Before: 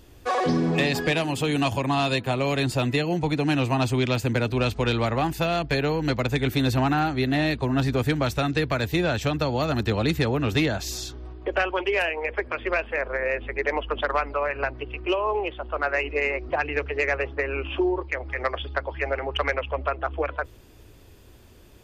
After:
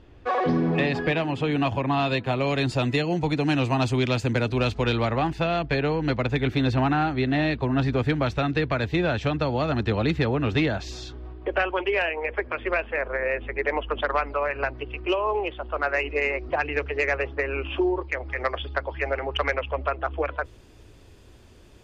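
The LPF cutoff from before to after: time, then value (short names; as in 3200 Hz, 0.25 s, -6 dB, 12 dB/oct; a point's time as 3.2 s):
1.82 s 2700 Hz
2.92 s 7100 Hz
4.58 s 7100 Hz
5.38 s 3600 Hz
13.77 s 3600 Hz
14.7 s 8600 Hz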